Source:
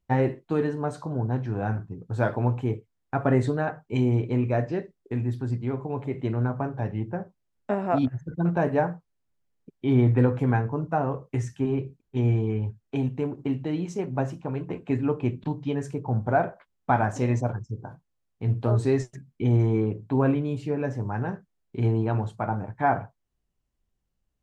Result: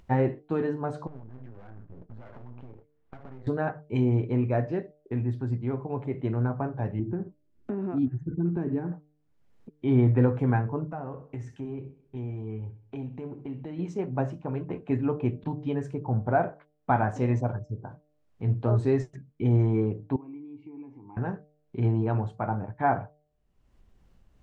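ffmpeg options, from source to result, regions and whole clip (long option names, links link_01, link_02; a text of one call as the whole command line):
ffmpeg -i in.wav -filter_complex "[0:a]asettb=1/sr,asplit=3[link_01][link_02][link_03];[link_01]atrim=end=1.074[link_04];[link_02]atrim=start=1.07:end=3.47,asetpts=PTS-STARTPTS,afade=type=in:duration=0.004:curve=qsin,afade=type=out:start_time=2.396:duration=0.004:curve=qsin,lowpass=2700,acompressor=threshold=-35dB:ratio=16:attack=3.2:release=140:knee=1:detection=peak,aeval=exprs='max(val(0),0)':channel_layout=same[link_05];[link_03]atrim=start=3.466[link_06];[link_04][link_05]acrossfade=duration=0.004:curve1=hsin:curve2=qsin[link_07];[link_07][link_06]acrossfade=duration=0.004:curve1=qsin:curve2=hsin,asettb=1/sr,asplit=3[link_08][link_09][link_10];[link_08]atrim=end=6.994[link_11];[link_09]atrim=start=6.99:end=8.92,asetpts=PTS-STARTPTS,afade=type=in:duration=0.004:curve=qsin,afade=type=out:start_time=1.926:duration=0.004:curve=qsin,acompressor=threshold=-38dB:ratio=2.5:attack=3.2:release=140:knee=1:detection=peak,lowshelf=frequency=450:width_type=q:width=3:gain=8[link_12];[link_10]atrim=start=8.916[link_13];[link_11][link_12]acrossfade=duration=0.004:curve1=hsin:curve2=qsin[link_14];[link_14][link_13]acrossfade=duration=0.004:curve1=qsin:curve2=hsin,asettb=1/sr,asplit=3[link_15][link_16][link_17];[link_15]atrim=end=10.874[link_18];[link_16]atrim=start=10.87:end=13.79,asetpts=PTS-STARTPTS,afade=type=in:duration=0.004:curve=qsin,afade=type=out:start_time=2.916:duration=0.004:curve=qsin,acompressor=threshold=-35dB:ratio=2.5:attack=3.2:release=140:knee=1:detection=peak,aecho=1:1:64|128|192|256:0.168|0.0806|0.0387|0.0186,atrim=end_sample=128772[link_19];[link_17]atrim=start=13.786[link_20];[link_18][link_19]acrossfade=duration=0.004:curve1=hsin:curve2=qsin[link_21];[link_21][link_20]acrossfade=duration=0.004:curve1=qsin:curve2=hsin,asettb=1/sr,asplit=3[link_22][link_23][link_24];[link_22]atrim=end=20.164[link_25];[link_23]atrim=start=20.16:end=21.17,asetpts=PTS-STARTPTS,afade=type=in:duration=0.004:curve=qsin,afade=type=out:start_time=1.006:duration=0.004:curve=qsin,acompressor=threshold=-28dB:ratio=6:attack=3.2:release=140:knee=1:detection=peak,asplit=3[link_26][link_27][link_28];[link_26]bandpass=frequency=300:width_type=q:width=8,volume=0dB[link_29];[link_27]bandpass=frequency=870:width_type=q:width=8,volume=-6dB[link_30];[link_28]bandpass=frequency=2240:width_type=q:width=8,volume=-9dB[link_31];[link_29][link_30][link_31]amix=inputs=3:normalize=0,aecho=1:1:1.8:0.32,atrim=end_sample=44541[link_32];[link_24]atrim=start=21.166[link_33];[link_25][link_32]acrossfade=duration=0.004:curve1=hsin:curve2=qsin[link_34];[link_34][link_33]acrossfade=duration=0.004:curve1=qsin:curve2=hsin,lowpass=frequency=2100:poles=1,bandreject=frequency=149.9:width_type=h:width=4,bandreject=frequency=299.8:width_type=h:width=4,bandreject=frequency=449.7:width_type=h:width=4,bandreject=frequency=599.6:width_type=h:width=4,bandreject=frequency=749.5:width_type=h:width=4,acompressor=mode=upward:threshold=-40dB:ratio=2.5,volume=-1dB" out.wav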